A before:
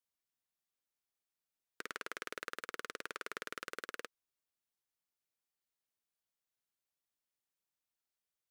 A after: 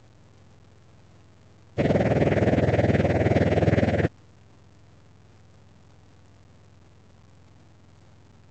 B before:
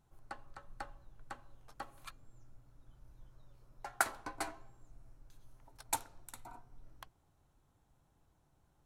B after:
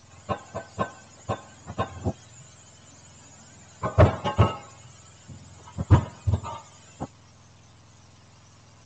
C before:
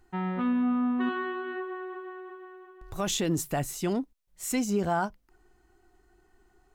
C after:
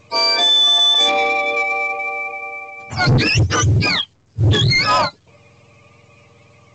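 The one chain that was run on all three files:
spectrum inverted on a logarithmic axis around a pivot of 930 Hz; saturation -29.5 dBFS; µ-law 128 kbps 16 kHz; peak normalisation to -9 dBFS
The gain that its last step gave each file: +24.0 dB, +20.0 dB, +19.0 dB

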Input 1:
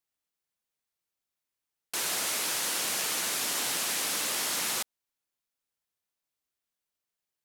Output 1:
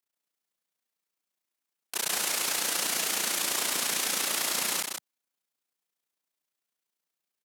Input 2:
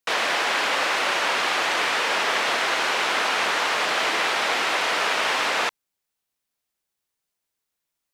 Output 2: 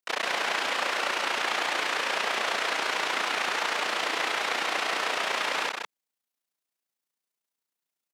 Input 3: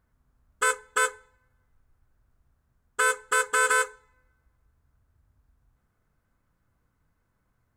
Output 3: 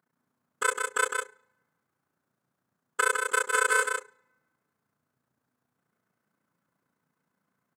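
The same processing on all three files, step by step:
steep high-pass 150 Hz 36 dB/octave; AM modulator 29 Hz, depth 100%; on a send: delay 157 ms -5 dB; on the sum: normalise loudness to -27 LUFS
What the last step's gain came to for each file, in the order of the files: +4.5 dB, -2.5 dB, +1.5 dB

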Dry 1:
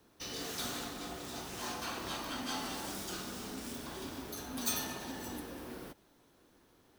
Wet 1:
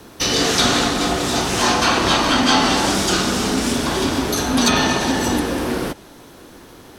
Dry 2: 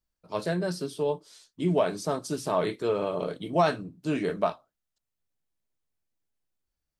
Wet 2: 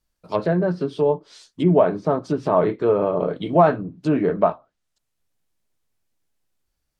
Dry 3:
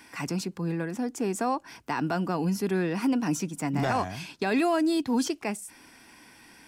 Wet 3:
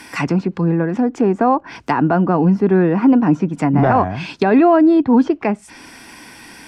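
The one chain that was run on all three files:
low-pass that closes with the level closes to 1.3 kHz, closed at -26.5 dBFS; peak normalisation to -3 dBFS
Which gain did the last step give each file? +24.0 dB, +8.5 dB, +13.5 dB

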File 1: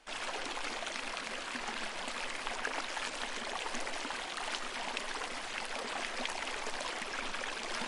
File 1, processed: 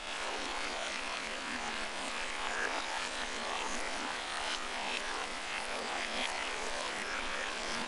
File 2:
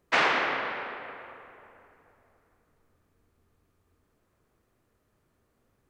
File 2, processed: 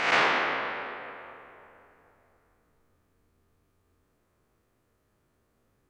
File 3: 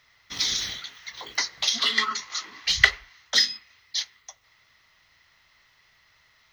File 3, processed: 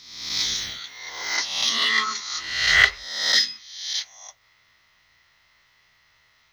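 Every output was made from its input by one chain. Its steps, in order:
reverse spectral sustain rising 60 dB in 0.90 s; trim -2 dB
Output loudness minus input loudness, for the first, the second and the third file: +1.5 LU, +0.5 LU, +2.5 LU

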